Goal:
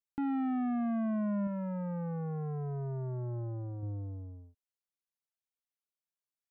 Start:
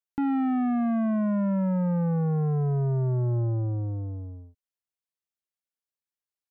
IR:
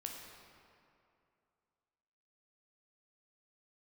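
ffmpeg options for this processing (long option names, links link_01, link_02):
-filter_complex "[0:a]asettb=1/sr,asplit=3[link_01][link_02][link_03];[link_01]atrim=end=1.474[link_04];[link_02]atrim=start=1.47:end=3.83,asetpts=PTS-STARTPTS,afade=type=in:duration=0.004:curve=qsin,afade=type=out:start_time=2.356:duration=0.004:curve=qsin,lowshelf=frequency=390:gain=-5.5[link_05];[link_03]atrim=start=3.826[link_06];[link_04][link_05]acrossfade=duration=0.004:curve1=hsin:curve2=qsin[link_07];[link_07][link_06]acrossfade=duration=0.004:curve1=qsin:curve2=hsin,volume=-7dB"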